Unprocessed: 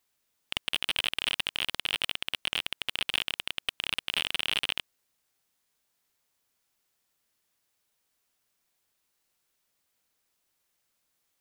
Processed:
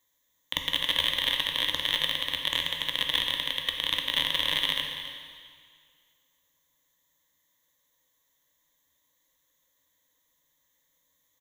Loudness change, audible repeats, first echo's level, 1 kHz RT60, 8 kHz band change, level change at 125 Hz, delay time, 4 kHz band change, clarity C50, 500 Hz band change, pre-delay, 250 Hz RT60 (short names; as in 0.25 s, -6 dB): +3.5 dB, 1, -13.5 dB, 2.0 s, -0.5 dB, +5.5 dB, 0.278 s, +4.5 dB, 4.0 dB, +4.5 dB, 6 ms, 2.0 s